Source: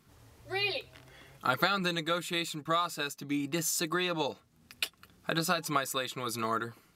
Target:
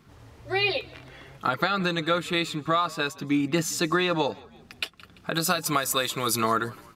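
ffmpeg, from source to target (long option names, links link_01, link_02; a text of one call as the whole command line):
ffmpeg -i in.wav -filter_complex "[0:a]asetnsamples=nb_out_samples=441:pad=0,asendcmd='5.34 equalizer g 5.5;6.38 equalizer g -2',equalizer=frequency=14000:width=0.31:gain=-12,asplit=4[link_01][link_02][link_03][link_04];[link_02]adelay=170,afreqshift=-45,volume=-23.5dB[link_05];[link_03]adelay=340,afreqshift=-90,volume=-29.9dB[link_06];[link_04]adelay=510,afreqshift=-135,volume=-36.3dB[link_07];[link_01][link_05][link_06][link_07]amix=inputs=4:normalize=0,alimiter=limit=-20dB:level=0:latency=1:release=353,volume=8.5dB" out.wav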